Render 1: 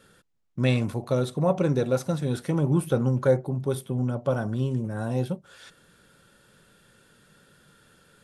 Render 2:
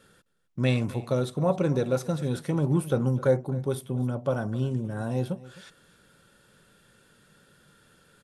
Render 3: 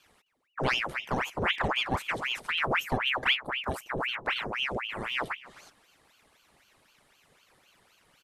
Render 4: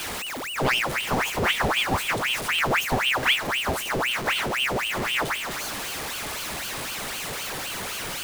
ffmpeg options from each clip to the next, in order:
ffmpeg -i in.wav -af "aecho=1:1:261:0.112,volume=-1.5dB" out.wav
ffmpeg -i in.wav -af "aeval=exprs='val(0)*sin(2*PI*1600*n/s+1600*0.85/3.9*sin(2*PI*3.9*n/s))':channel_layout=same,volume=-1.5dB" out.wav
ffmpeg -i in.wav -af "aeval=exprs='val(0)+0.5*0.0376*sgn(val(0))':channel_layout=same,volume=2.5dB" out.wav

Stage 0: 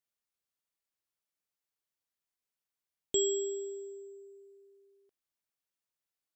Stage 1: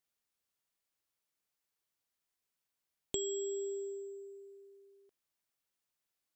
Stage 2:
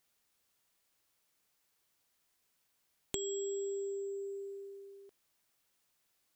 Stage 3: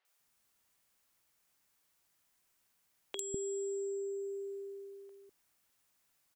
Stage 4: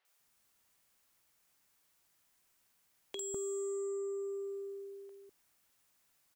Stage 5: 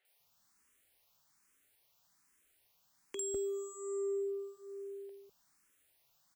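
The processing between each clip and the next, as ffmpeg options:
ffmpeg -i in.wav -af "acompressor=threshold=-38dB:ratio=5,volume=3dB" out.wav
ffmpeg -i in.wav -af "acompressor=threshold=-49dB:ratio=3,volume=10dB" out.wav
ffmpeg -i in.wav -filter_complex "[0:a]acrossover=split=430|3800[link_01][link_02][link_03];[link_03]adelay=50[link_04];[link_01]adelay=200[link_05];[link_05][link_02][link_04]amix=inputs=3:normalize=0,volume=2dB" out.wav
ffmpeg -i in.wav -af "asoftclip=type=tanh:threshold=-34.5dB,volume=2dB" out.wav
ffmpeg -i in.wav -filter_complex "[0:a]asplit=2[link_01][link_02];[link_02]afreqshift=1.2[link_03];[link_01][link_03]amix=inputs=2:normalize=1,volume=3.5dB" out.wav

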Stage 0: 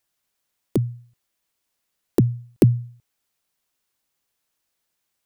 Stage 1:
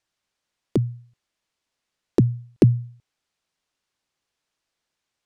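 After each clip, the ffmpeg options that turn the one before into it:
ffmpeg -i in.wav -af "lowpass=6300" out.wav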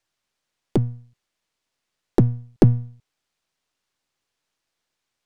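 ffmpeg -i in.wav -af "aeval=exprs='if(lt(val(0),0),0.447*val(0),val(0))':channel_layout=same,volume=3.5dB" out.wav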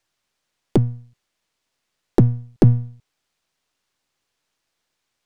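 ffmpeg -i in.wav -af "alimiter=level_in=5dB:limit=-1dB:release=50:level=0:latency=1,volume=-1.5dB" out.wav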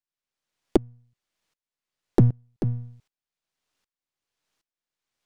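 ffmpeg -i in.wav -af "aeval=exprs='val(0)*pow(10,-24*if(lt(mod(-1.3*n/s,1),2*abs(-1.3)/1000),1-mod(-1.3*n/s,1)/(2*abs(-1.3)/1000),(mod(-1.3*n/s,1)-2*abs(-1.3)/1000)/(1-2*abs(-1.3)/1000))/20)':channel_layout=same" out.wav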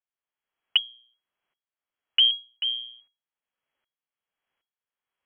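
ffmpeg -i in.wav -af "lowpass=frequency=2800:width_type=q:width=0.5098,lowpass=frequency=2800:width_type=q:width=0.6013,lowpass=frequency=2800:width_type=q:width=0.9,lowpass=frequency=2800:width_type=q:width=2.563,afreqshift=-3300,aemphasis=mode=reproduction:type=50fm" out.wav

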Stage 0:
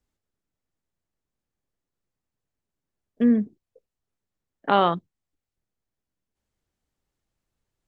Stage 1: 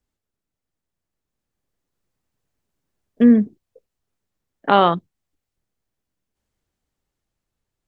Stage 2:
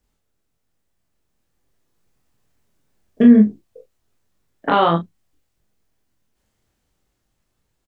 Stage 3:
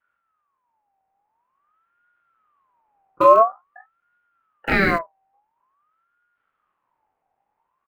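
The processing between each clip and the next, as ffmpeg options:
ffmpeg -i in.wav -af "dynaudnorm=framelen=310:gausssize=11:maxgain=11.5dB" out.wav
ffmpeg -i in.wav -filter_complex "[0:a]alimiter=limit=-11.5dB:level=0:latency=1:release=291,asplit=2[link_01][link_02];[link_02]aecho=0:1:24|42|71:0.708|0.531|0.168[link_03];[link_01][link_03]amix=inputs=2:normalize=0,volume=6dB" out.wav
ffmpeg -i in.wav -filter_complex "[0:a]acrossover=split=160|610|1900[link_01][link_02][link_03][link_04];[link_04]acrusher=bits=6:mix=0:aa=0.000001[link_05];[link_01][link_02][link_03][link_05]amix=inputs=4:normalize=0,aeval=exprs='val(0)*sin(2*PI*1100*n/s+1100*0.3/0.48*sin(2*PI*0.48*n/s))':channel_layout=same" out.wav

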